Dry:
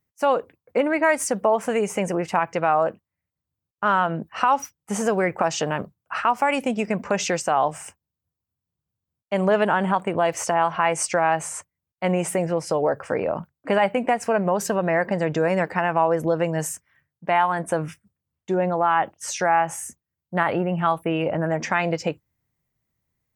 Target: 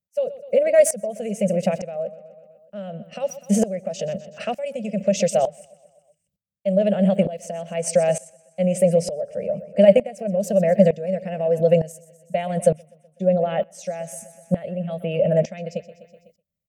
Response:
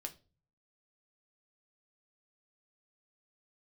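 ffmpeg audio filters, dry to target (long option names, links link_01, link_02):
-filter_complex "[0:a]firequalizer=gain_entry='entry(140,0);entry(200,11);entry(290,-15);entry(580,13);entry(930,-26);entry(1900,-7);entry(2700,0);entry(9100,2)':delay=0.05:min_phase=1,atempo=1.4,asplit=2[link_01][link_02];[link_02]aecho=0:1:125|250|375|500|625:0.141|0.0735|0.0382|0.0199|0.0103[link_03];[link_01][link_03]amix=inputs=2:normalize=0,aeval=exprs='val(0)*pow(10,-18*if(lt(mod(-1.1*n/s,1),2*abs(-1.1)/1000),1-mod(-1.1*n/s,1)/(2*abs(-1.1)/1000),(mod(-1.1*n/s,1)-2*abs(-1.1)/1000)/(1-2*abs(-1.1)/1000))/20)':channel_layout=same,volume=3.5dB"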